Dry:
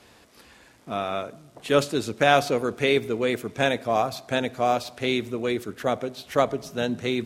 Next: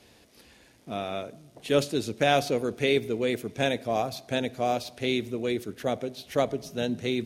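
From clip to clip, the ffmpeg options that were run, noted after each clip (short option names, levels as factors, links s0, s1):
-af "equalizer=f=1200:t=o:w=1.1:g=-8.5,bandreject=f=7600:w=12,volume=0.841"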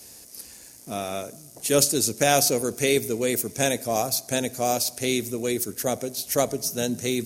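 -af "aexciter=amount=6.6:drive=6.6:freq=5000,volume=1.26"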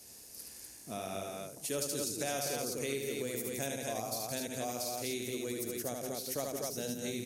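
-af "aecho=1:1:72.89|169.1|247.8:0.631|0.355|0.631,acompressor=threshold=0.0398:ratio=2.5,volume=0.376"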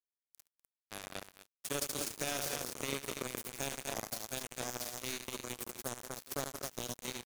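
-af "acrusher=bits=4:mix=0:aa=0.5"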